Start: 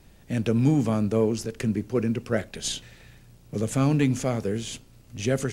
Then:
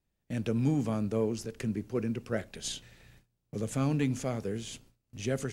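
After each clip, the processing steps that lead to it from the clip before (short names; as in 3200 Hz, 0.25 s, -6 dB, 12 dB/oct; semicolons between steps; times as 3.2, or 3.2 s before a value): gate with hold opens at -40 dBFS; gain -7 dB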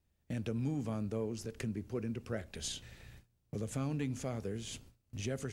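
bell 76 Hz +11.5 dB 0.5 oct; compressor 2:1, threshold -41 dBFS, peak gain reduction 10.5 dB; gain +1 dB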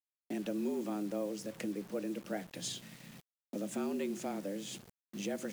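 frequency shift +99 Hz; bit-crush 9-bit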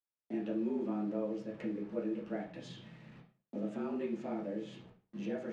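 tape spacing loss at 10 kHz 27 dB; reverb RT60 0.40 s, pre-delay 5 ms, DRR -4 dB; gain -4 dB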